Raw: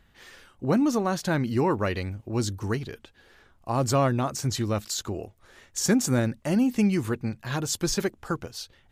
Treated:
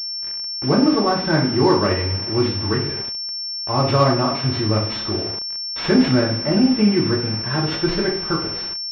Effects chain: two-slope reverb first 0.49 s, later 2.1 s, from -19 dB, DRR -3.5 dB; bit-crush 6-bit; pulse-width modulation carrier 5400 Hz; gain +2.5 dB

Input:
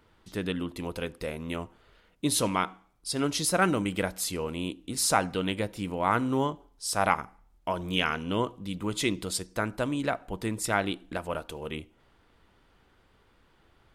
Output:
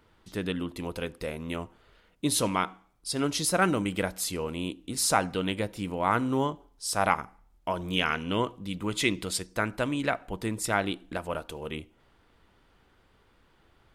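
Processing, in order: 8.09–10.37 dynamic EQ 2200 Hz, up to +5 dB, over -46 dBFS, Q 1.2

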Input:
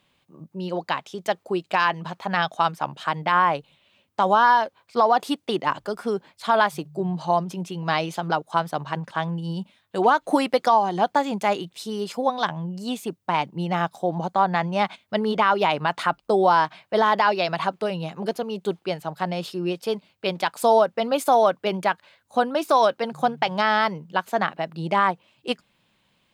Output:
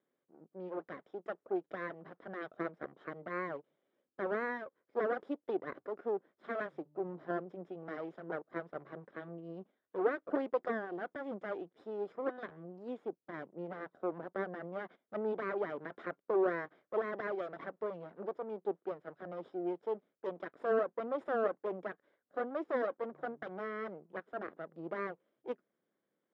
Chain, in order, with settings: minimum comb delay 0.57 ms; ladder band-pass 510 Hz, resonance 25%; gain +2.5 dB

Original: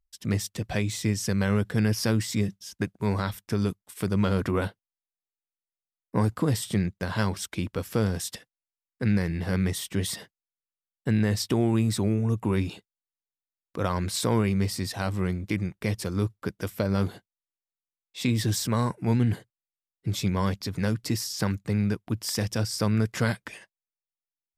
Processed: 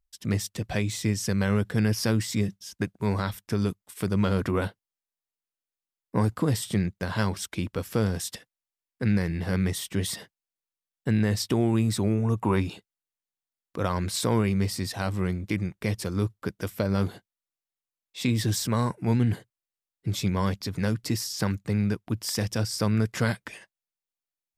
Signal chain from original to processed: 12.03–12.6 bell 940 Hz +2.5 dB -> +9.5 dB 1.5 oct

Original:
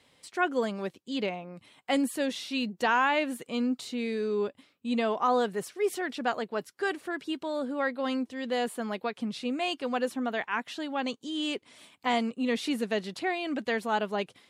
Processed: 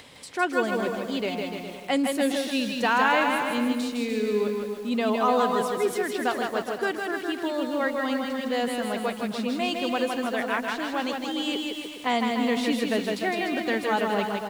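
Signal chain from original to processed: upward compressor, threshold -40 dBFS; bouncing-ball echo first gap 0.16 s, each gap 0.85×, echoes 5; lo-fi delay 0.151 s, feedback 55%, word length 7-bit, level -11 dB; gain +2 dB

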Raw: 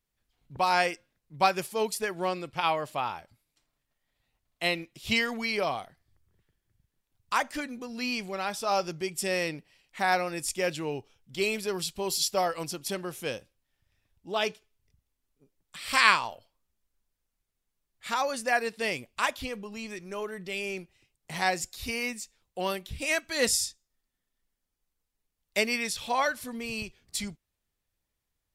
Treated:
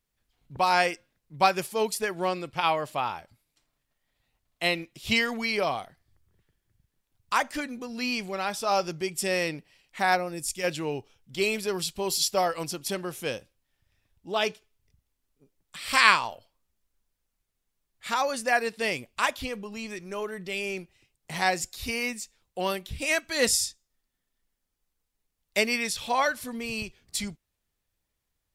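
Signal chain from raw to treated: 10.15–10.63 bell 4500 Hz -> 550 Hz -10.5 dB 3 oct; gain +2 dB

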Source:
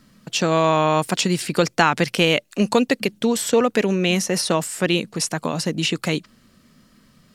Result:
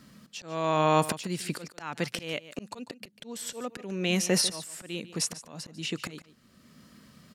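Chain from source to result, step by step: HPF 58 Hz; auto swell 0.781 s; on a send: echo 0.146 s -15.5 dB

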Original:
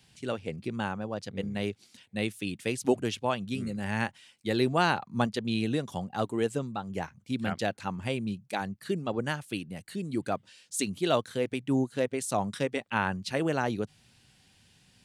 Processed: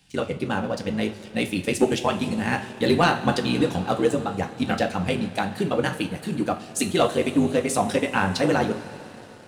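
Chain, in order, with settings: granular stretch 0.63×, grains 37 ms; two-slope reverb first 0.31 s, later 4.7 s, from -18 dB, DRR 4.5 dB; sample leveller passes 1; gain +4 dB

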